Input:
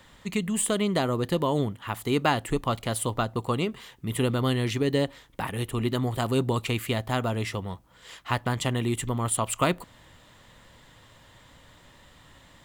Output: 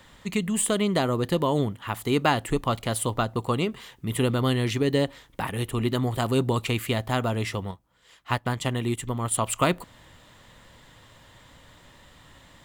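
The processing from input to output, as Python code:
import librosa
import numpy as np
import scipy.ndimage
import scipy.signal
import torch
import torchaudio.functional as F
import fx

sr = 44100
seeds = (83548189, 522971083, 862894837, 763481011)

y = fx.upward_expand(x, sr, threshold_db=-45.0, expansion=1.5, at=(7.71, 9.34))
y = y * librosa.db_to_amplitude(1.5)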